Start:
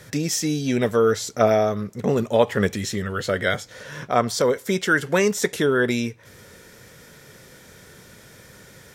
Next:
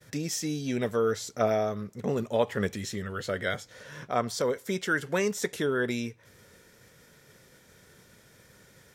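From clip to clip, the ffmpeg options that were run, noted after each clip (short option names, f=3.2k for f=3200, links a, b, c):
-af "agate=range=-33dB:threshold=-44dB:ratio=3:detection=peak,volume=-8dB"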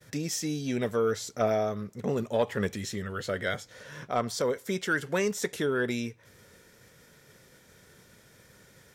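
-af "asoftclip=type=tanh:threshold=-13.5dB"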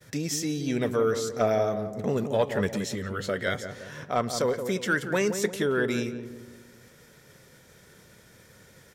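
-filter_complex "[0:a]asplit=2[a][b];[b]adelay=174,lowpass=f=930:p=1,volume=-7dB,asplit=2[c][d];[d]adelay=174,lowpass=f=930:p=1,volume=0.5,asplit=2[e][f];[f]adelay=174,lowpass=f=930:p=1,volume=0.5,asplit=2[g][h];[h]adelay=174,lowpass=f=930:p=1,volume=0.5,asplit=2[i][j];[j]adelay=174,lowpass=f=930:p=1,volume=0.5,asplit=2[k][l];[l]adelay=174,lowpass=f=930:p=1,volume=0.5[m];[a][c][e][g][i][k][m]amix=inputs=7:normalize=0,volume=2dB"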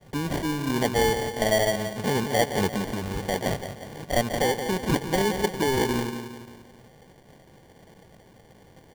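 -af "acrusher=samples=34:mix=1:aa=0.000001,volume=2dB"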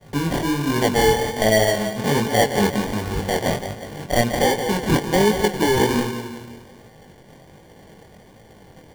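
-af "flanger=delay=18:depth=7.1:speed=1.3,volume=8.5dB"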